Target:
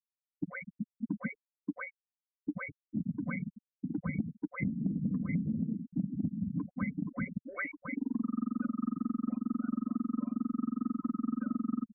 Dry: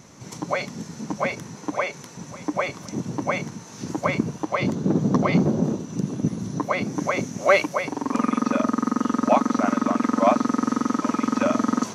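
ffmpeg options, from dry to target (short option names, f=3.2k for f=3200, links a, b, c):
-filter_complex "[0:a]agate=range=-33dB:threshold=-28dB:ratio=3:detection=peak,asettb=1/sr,asplit=3[a][b][c];[a]atrim=end=6.694[d];[b]atrim=start=6.69:end=8.97,asetpts=PTS-STARTPTS,afade=t=in:d=0.004:c=qsin,afade=t=out:st=2.276:d=0.004:c=qsin,acrossover=split=380[e][f];[f]adelay=90[g];[e][g]amix=inputs=2:normalize=0,atrim=end_sample=100548[h];[c]atrim=start=8.966[i];[d][h]acrossfade=d=0.004:c1=hsin:c2=qsin[j];[j][i]acrossfade=d=0.004:c1=qsin:c2=hsin,afftfilt=real='re*gte(hypot(re,im),0.158)':imag='im*gte(hypot(re,im),0.158)':win_size=1024:overlap=0.75,acrossover=split=240|3000[k][l][m];[l]acompressor=threshold=-35dB:ratio=6[n];[k][n][m]amix=inputs=3:normalize=0,firequalizer=gain_entry='entry(130,0);entry(790,-28);entry(1400,-1);entry(3300,-4);entry(4700,-20);entry(6700,-5)':delay=0.05:min_phase=1,tremolo=f=4.5:d=0.32,aecho=1:1:4:0.66,acompressor=threshold=-36dB:ratio=6,asuperstop=centerf=3900:order=12:qfactor=0.81,volume=6dB"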